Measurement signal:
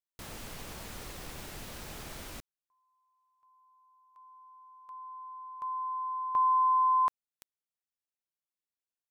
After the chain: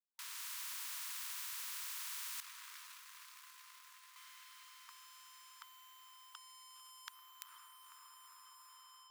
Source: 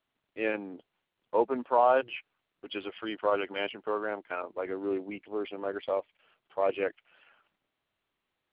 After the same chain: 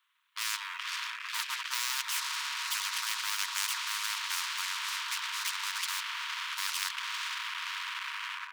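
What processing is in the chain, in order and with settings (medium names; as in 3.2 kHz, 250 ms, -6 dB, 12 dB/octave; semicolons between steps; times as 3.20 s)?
on a send: echo that smears into a reverb 483 ms, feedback 77%, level -15.5 dB; on the sum: level rider gain up to 8 dB; waveshaping leveller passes 2; brick-wall FIR high-pass 920 Hz; spectrum-flattening compressor 10:1; trim -6.5 dB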